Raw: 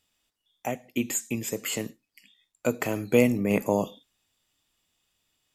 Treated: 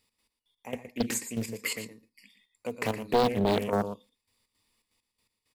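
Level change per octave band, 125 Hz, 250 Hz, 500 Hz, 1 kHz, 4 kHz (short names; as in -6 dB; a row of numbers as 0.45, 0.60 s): -3.5, -5.0, -2.5, +4.0, +1.5 dB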